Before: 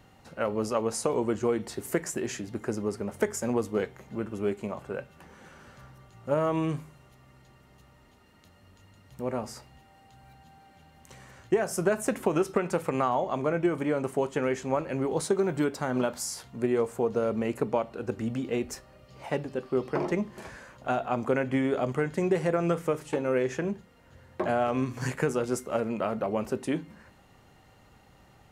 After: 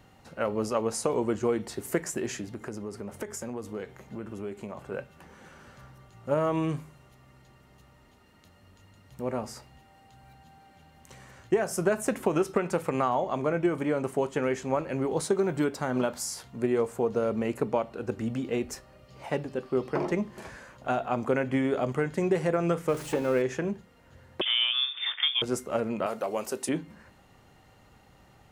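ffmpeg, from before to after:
ffmpeg -i in.wav -filter_complex "[0:a]asettb=1/sr,asplit=3[link_01][link_02][link_03];[link_01]atrim=end=2.484[link_04];[link_02]atrim=start=2.48:end=4.92,asetpts=PTS-STARTPTS,afade=type=in:duration=0.004:curve=qsin,afade=type=out:start_time=2.436:duration=0.004:curve=qsin,acompressor=threshold=-34dB:ratio=3:attack=3.2:release=140:knee=1:detection=peak[link_05];[link_03]atrim=start=4.916[link_06];[link_04][link_05]acrossfade=duration=0.004:curve1=hsin:curve2=qsin[link_07];[link_07][link_06]acrossfade=duration=0.004:curve1=qsin:curve2=hsin,asettb=1/sr,asplit=3[link_08][link_09][link_10];[link_08]atrim=end=22.884[link_11];[link_09]atrim=start=22.88:end=23.42,asetpts=PTS-STARTPTS,afade=type=in:duration=0.004:curve=qsin,afade=type=out:start_time=0.536:duration=0.004:curve=qsin,aeval=exprs='val(0)+0.5*0.0126*sgn(val(0))':channel_layout=same[link_12];[link_10]atrim=start=23.416[link_13];[link_11][link_12]acrossfade=duration=0.004:curve1=hsin:curve2=qsin[link_14];[link_14][link_13]acrossfade=duration=0.004:curve1=qsin:curve2=hsin,asettb=1/sr,asplit=3[link_15][link_16][link_17];[link_15]atrim=end=24.414[link_18];[link_16]atrim=start=24.41:end=25.42,asetpts=PTS-STARTPTS,afade=type=in:duration=0.004:curve=qsin,afade=type=out:start_time=1.006:duration=0.004:curve=qsin,lowpass=frequency=3100:width_type=q:width=0.5098,lowpass=frequency=3100:width_type=q:width=0.6013,lowpass=frequency=3100:width_type=q:width=0.9,lowpass=frequency=3100:width_type=q:width=2.563,afreqshift=-3700[link_19];[link_17]atrim=start=25.416[link_20];[link_18][link_19]acrossfade=duration=0.004:curve1=hsin:curve2=qsin[link_21];[link_21][link_20]acrossfade=duration=0.004:curve1=qsin:curve2=hsin,asettb=1/sr,asplit=3[link_22][link_23][link_24];[link_22]atrim=end=26.064[link_25];[link_23]atrim=start=26.06:end=26.69,asetpts=PTS-STARTPTS,afade=type=in:duration=0.004:curve=qsin,afade=type=out:start_time=0.626:duration=0.004:curve=qsin,bass=frequency=250:gain=-14,treble=frequency=4000:gain=12[link_26];[link_24]atrim=start=26.686[link_27];[link_25][link_26]acrossfade=duration=0.004:curve1=hsin:curve2=qsin[link_28];[link_28][link_27]acrossfade=duration=0.004:curve1=qsin:curve2=hsin" out.wav

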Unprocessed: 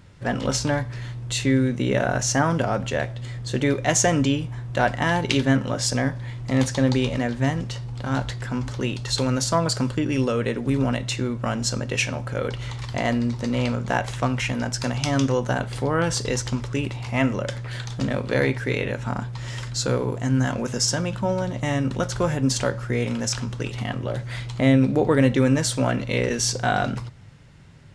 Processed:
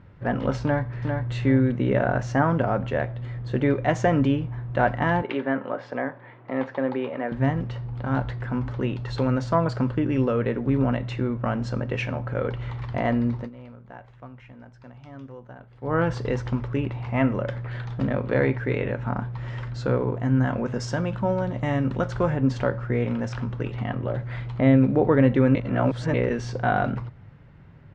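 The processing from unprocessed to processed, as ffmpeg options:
ffmpeg -i in.wav -filter_complex "[0:a]asplit=2[link_01][link_02];[link_02]afade=type=in:start_time=0.62:duration=0.01,afade=type=out:start_time=1.31:duration=0.01,aecho=0:1:400|800|1200:0.562341|0.140585|0.0351463[link_03];[link_01][link_03]amix=inputs=2:normalize=0,asettb=1/sr,asplit=3[link_04][link_05][link_06];[link_04]atrim=end=5.224[link_07];[link_05]atrim=start=5.22:end=7.32,asetpts=PTS-STARTPTS,afade=type=in:duration=0.004:curve=qsin,afade=type=out:start_time=2.096:duration=0.004:curve=qsin,highpass=360,lowpass=2500[link_08];[link_06]atrim=start=7.316[link_09];[link_07][link_08]acrossfade=duration=0.004:curve1=hsin:curve2=qsin[link_10];[link_10][link_09]acrossfade=duration=0.004:curve1=qsin:curve2=hsin,asettb=1/sr,asplit=3[link_11][link_12][link_13];[link_11]atrim=end=20.804[link_14];[link_12]atrim=start=20.8:end=22.3,asetpts=PTS-STARTPTS,afade=type=in:duration=0.004:curve=qsin,afade=type=out:start_time=1.496:duration=0.004:curve=qsin,aemphasis=mode=production:type=cd[link_15];[link_13]atrim=start=22.296[link_16];[link_14][link_15]acrossfade=duration=0.004:curve1=hsin:curve2=qsin[link_17];[link_17][link_16]acrossfade=duration=0.004:curve1=qsin:curve2=hsin,asplit=5[link_18][link_19][link_20][link_21][link_22];[link_18]atrim=end=13.5,asetpts=PTS-STARTPTS,afade=type=out:start_time=13.37:duration=0.13:silence=0.105925[link_23];[link_19]atrim=start=13.5:end=15.81,asetpts=PTS-STARTPTS,volume=-19.5dB[link_24];[link_20]atrim=start=15.81:end=25.552,asetpts=PTS-STARTPTS,afade=type=in:duration=0.13:silence=0.105925[link_25];[link_21]atrim=start=25.548:end=26.142,asetpts=PTS-STARTPTS,areverse[link_26];[link_22]atrim=start=26.138[link_27];[link_23][link_24][link_25]concat=n=3:v=0:a=1[link_28];[link_28][link_26]acrossfade=duration=0.004:curve1=hsin:curve2=hsin[link_29];[link_29][link_27]acrossfade=duration=0.004:curve1=hsin:curve2=hsin,lowpass=1800" out.wav

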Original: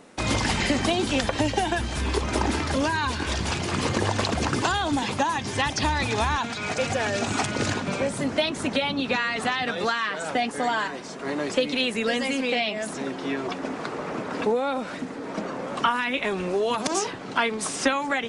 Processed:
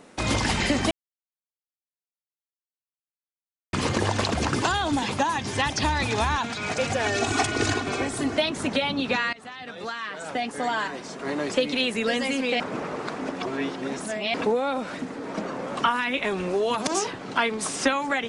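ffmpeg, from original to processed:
ffmpeg -i in.wav -filter_complex "[0:a]asettb=1/sr,asplit=3[link_01][link_02][link_03];[link_01]atrim=end=7.044[link_04];[link_02]atrim=start=7.04:end=8.36,asetpts=PTS-STARTPTS,afade=type=in:duration=0.004:curve=qsin,afade=type=out:start_time=1.316:duration=0.004:curve=qsin,aecho=1:1:2.7:0.74,atrim=end_sample=58212[link_05];[link_03]atrim=start=8.356[link_06];[link_04][link_05]acrossfade=duration=0.004:curve1=hsin:curve2=qsin[link_07];[link_07][link_06]acrossfade=duration=0.004:curve1=qsin:curve2=hsin,asplit=6[link_08][link_09][link_10][link_11][link_12][link_13];[link_08]atrim=end=0.91,asetpts=PTS-STARTPTS,afade=type=out:start_time=0.906:duration=0.004:curve=hsin[link_14];[link_09]atrim=start=0.91:end=3.73,asetpts=PTS-STARTPTS,volume=0[link_15];[link_10]atrim=start=3.73:end=9.33,asetpts=PTS-STARTPTS,afade=type=in:duration=0.004:curve=hsin,afade=type=out:start_time=5.596:duration=0.004:curve=hsin:silence=0.0944061[link_16];[link_11]atrim=start=9.33:end=12.602,asetpts=PTS-STARTPTS,afade=type=in:duration=1.67:silence=0.0944061[link_17];[link_12]atrim=start=12.598:end=14.342,asetpts=PTS-STARTPTS,areverse[link_18];[link_13]atrim=start=14.338[link_19];[link_14][link_15][link_16][link_17]concat=n=4:v=0:a=1[link_20];[link_20][link_18]acrossfade=duration=0.004:curve1=hsin:curve2=hsin[link_21];[link_21][link_19]acrossfade=duration=0.004:curve1=hsin:curve2=hsin" out.wav

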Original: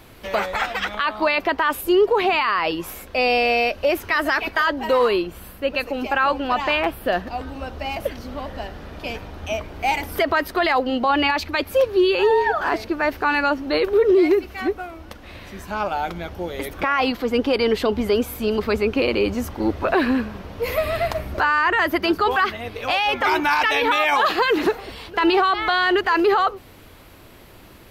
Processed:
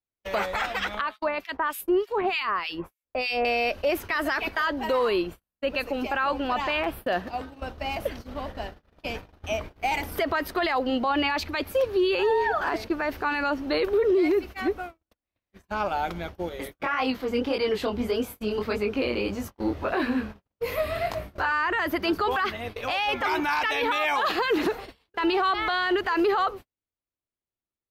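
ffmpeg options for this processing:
ffmpeg -i in.wav -filter_complex "[0:a]asettb=1/sr,asplit=3[link_01][link_02][link_03];[link_01]atrim=end=1.014[link_04];[link_02]atrim=start=1.01:end=3.45,asetpts=PTS-STARTPTS,afade=type=in:duration=0.004:curve=qsin,afade=type=out:start_time=2.436:duration=0.004:curve=qsin,acrossover=split=1800[link_05][link_06];[link_05]aeval=exprs='val(0)*(1-1/2+1/2*cos(2*PI*3.3*n/s))':channel_layout=same[link_07];[link_06]aeval=exprs='val(0)*(1-1/2-1/2*cos(2*PI*3.3*n/s))':channel_layout=same[link_08];[link_07][link_08]amix=inputs=2:normalize=0[link_09];[link_03]atrim=start=3.446[link_10];[link_04][link_09]acrossfade=duration=0.004:curve1=hsin:curve2=qsin[link_11];[link_11][link_10]acrossfade=duration=0.004:curve1=qsin:curve2=hsin,asettb=1/sr,asplit=3[link_12][link_13][link_14];[link_12]atrim=end=7.054[link_15];[link_13]atrim=start=7.05:end=7.62,asetpts=PTS-STARTPTS,afade=type=in:duration=0.004:curve=qsin,afade=type=out:start_time=0.566:duration=0.004:curve=qsin,highpass=frequency=100:poles=1[link_16];[link_14]atrim=start=7.616[link_17];[link_15][link_16]acrossfade=duration=0.004:curve1=hsin:curve2=qsin[link_18];[link_18][link_17]acrossfade=duration=0.004:curve1=qsin:curve2=hsin,asettb=1/sr,asplit=3[link_19][link_20][link_21];[link_19]atrim=end=16.494[link_22];[link_20]atrim=start=16.49:end=21.52,asetpts=PTS-STARTPTS,afade=type=in:duration=0.004:curve=qsin,afade=type=out:start_time=5.026:duration=0.004:curve=qsin,flanger=delay=19:depth=6:speed=1.7[link_23];[link_21]atrim=start=21.516[link_24];[link_22][link_23]acrossfade=duration=0.004:curve1=hsin:curve2=qsin[link_25];[link_25][link_24]acrossfade=duration=0.004:curve1=qsin:curve2=hsin,agate=range=-49dB:threshold=-32dB:ratio=16:detection=peak,alimiter=limit=-13.5dB:level=0:latency=1:release=18,volume=-3dB" out.wav

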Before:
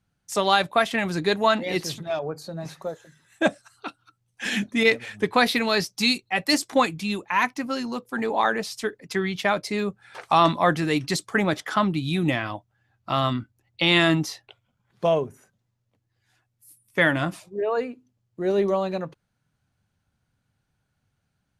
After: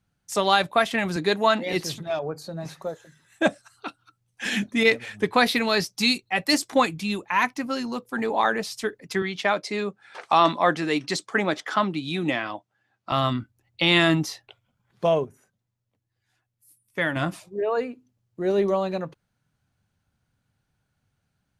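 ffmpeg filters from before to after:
ffmpeg -i in.wav -filter_complex "[0:a]asettb=1/sr,asplit=3[link_01][link_02][link_03];[link_01]atrim=end=1.164[link_04];[link_02]atrim=start=1.16:end=1.73,asetpts=PTS-STARTPTS,afade=type=in:duration=0.004:curve=qsin,afade=type=out:start_time=0.566:duration=0.004:curve=qsin,highpass=140[link_05];[link_03]atrim=start=1.726[link_06];[link_04][link_05]acrossfade=duration=0.004:curve1=hsin:curve2=qsin[link_07];[link_07][link_06]acrossfade=duration=0.004:curve1=qsin:curve2=hsin,asettb=1/sr,asplit=3[link_08][link_09][link_10];[link_08]atrim=end=9.224[link_11];[link_09]atrim=start=9.22:end=13.12,asetpts=PTS-STARTPTS,afade=type=in:duration=0.004:curve=qsin,afade=type=out:start_time=3.896:duration=0.004:curve=qsin,highpass=230,lowpass=7800[link_12];[link_10]atrim=start=13.116[link_13];[link_11][link_12]acrossfade=duration=0.004:curve1=hsin:curve2=qsin[link_14];[link_14][link_13]acrossfade=duration=0.004:curve1=qsin:curve2=hsin,asplit=3[link_15][link_16][link_17];[link_15]atrim=end=15.252[link_18];[link_16]atrim=start=15.248:end=17.162,asetpts=PTS-STARTPTS,volume=-5.5dB[link_19];[link_17]atrim=start=17.158[link_20];[link_18][link_19]acrossfade=duration=0.004:curve1=hsin:curve2=hsin[link_21];[link_21][link_20]acrossfade=duration=0.004:curve1=hsin:curve2=hsin" out.wav

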